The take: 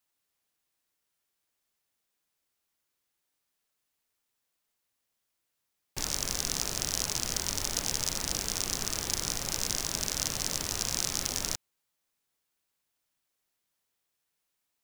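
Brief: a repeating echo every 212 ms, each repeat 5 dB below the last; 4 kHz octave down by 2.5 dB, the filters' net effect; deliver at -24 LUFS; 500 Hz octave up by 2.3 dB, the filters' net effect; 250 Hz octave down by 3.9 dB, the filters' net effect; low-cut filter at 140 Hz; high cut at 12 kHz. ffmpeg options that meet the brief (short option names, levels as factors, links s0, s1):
-af "highpass=140,lowpass=12000,equalizer=f=250:t=o:g=-6,equalizer=f=500:t=o:g=4.5,equalizer=f=4000:t=o:g=-3.5,aecho=1:1:212|424|636|848|1060|1272|1484:0.562|0.315|0.176|0.0988|0.0553|0.031|0.0173,volume=2.11"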